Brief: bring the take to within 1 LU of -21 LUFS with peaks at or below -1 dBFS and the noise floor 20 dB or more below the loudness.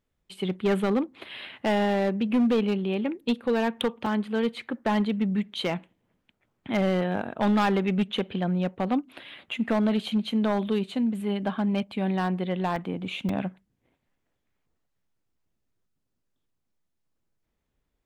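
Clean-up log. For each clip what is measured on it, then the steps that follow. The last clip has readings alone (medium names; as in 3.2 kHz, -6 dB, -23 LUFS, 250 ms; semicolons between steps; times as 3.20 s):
clipped samples 1.3%; clipping level -18.0 dBFS; dropouts 3; longest dropout 3.1 ms; loudness -27.0 LUFS; peak level -18.0 dBFS; loudness target -21.0 LUFS
-> clip repair -18 dBFS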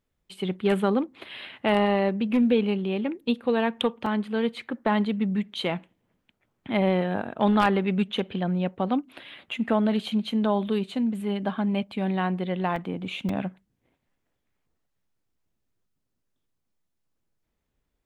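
clipped samples 0.0%; dropouts 3; longest dropout 3.1 ms
-> interpolate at 4.06/12.76/13.29 s, 3.1 ms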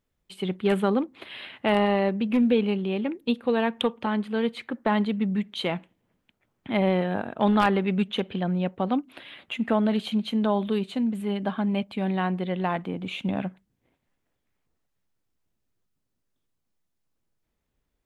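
dropouts 0; loudness -26.0 LUFS; peak level -9.0 dBFS; loudness target -21.0 LUFS
-> trim +5 dB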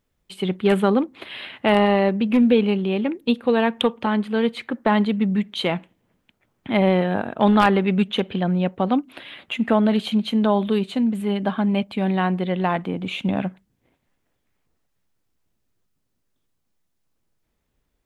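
loudness -21.0 LUFS; peak level -4.0 dBFS; noise floor -73 dBFS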